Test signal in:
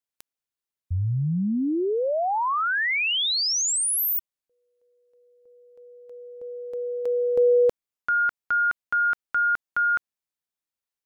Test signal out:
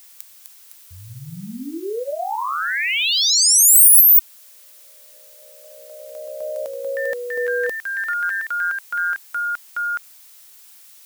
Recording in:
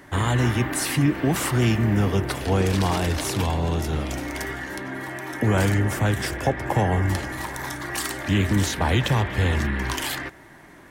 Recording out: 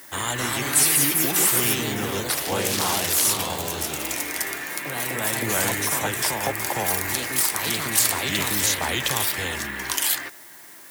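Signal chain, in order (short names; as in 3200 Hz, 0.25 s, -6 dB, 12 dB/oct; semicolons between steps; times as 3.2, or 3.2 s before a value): echoes that change speed 0.276 s, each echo +2 st, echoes 2; RIAA curve recording; added noise blue -44 dBFS; gain -2.5 dB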